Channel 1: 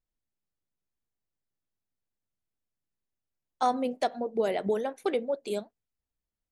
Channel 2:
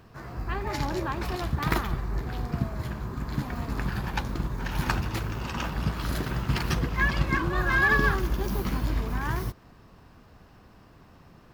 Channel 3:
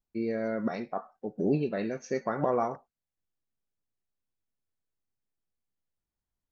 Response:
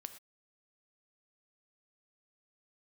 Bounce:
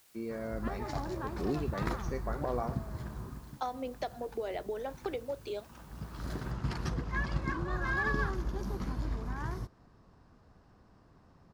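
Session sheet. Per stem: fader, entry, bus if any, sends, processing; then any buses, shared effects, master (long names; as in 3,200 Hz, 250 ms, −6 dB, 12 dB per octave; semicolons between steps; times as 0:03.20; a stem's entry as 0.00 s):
−3.5 dB, 0.00 s, no send, downward compressor, threshold −28 dBFS, peak gain reduction 8.5 dB; elliptic band-pass filter 280–6,000 Hz; bit-depth reduction 10 bits, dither triangular
−7.5 dB, 0.15 s, no send, low-pass filter 7,700 Hz 12 dB per octave; parametric band 2,700 Hz −8 dB 1.1 octaves; automatic ducking −15 dB, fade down 0.35 s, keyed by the first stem
−7.5 dB, 0.00 s, no send, no processing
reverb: not used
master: no processing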